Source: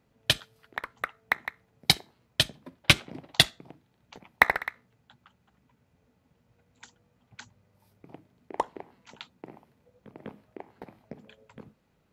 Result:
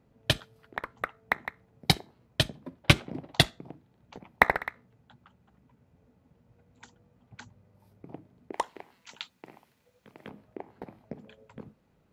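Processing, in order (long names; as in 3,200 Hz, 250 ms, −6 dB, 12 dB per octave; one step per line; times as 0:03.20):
tilt shelving filter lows +5 dB, about 1,200 Hz, from 0:08.52 lows −6.5 dB, from 0:10.28 lows +3 dB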